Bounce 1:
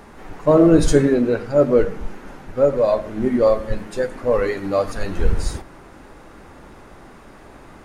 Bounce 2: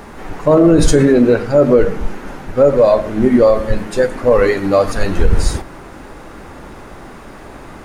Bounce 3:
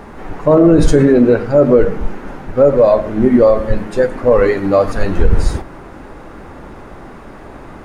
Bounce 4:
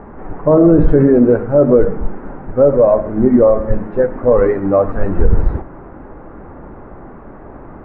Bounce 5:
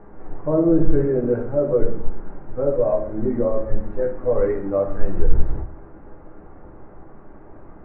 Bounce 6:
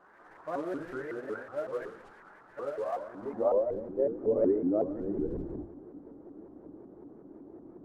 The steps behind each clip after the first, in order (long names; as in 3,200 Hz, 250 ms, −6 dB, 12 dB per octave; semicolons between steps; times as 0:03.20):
bit reduction 12 bits; boost into a limiter +9.5 dB; level −1 dB
high-shelf EQ 2,900 Hz −9.5 dB; level +1 dB
Bessel low-pass filter 1,200 Hz, order 4
convolution reverb RT60 0.45 s, pre-delay 6 ms, DRR 0 dB; level −13.5 dB
variable-slope delta modulation 64 kbit/s; band-pass filter sweep 1,600 Hz → 310 Hz, 0:02.96–0:04.10; pitch modulation by a square or saw wave saw up 5.4 Hz, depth 250 cents; level +1 dB